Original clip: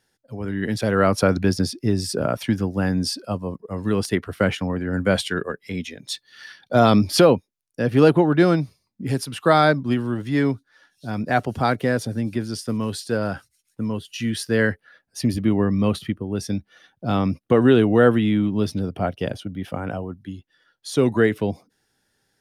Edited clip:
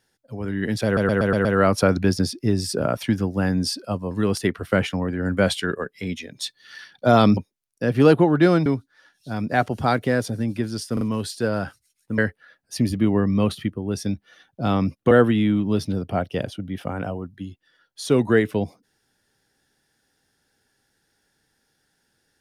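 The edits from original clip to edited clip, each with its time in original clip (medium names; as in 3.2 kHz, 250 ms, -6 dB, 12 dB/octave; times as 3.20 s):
0.85 s: stutter 0.12 s, 6 plays
3.51–3.79 s: delete
7.05–7.34 s: delete
8.63–10.43 s: delete
12.70 s: stutter 0.04 s, 3 plays
13.87–14.62 s: delete
17.55–17.98 s: delete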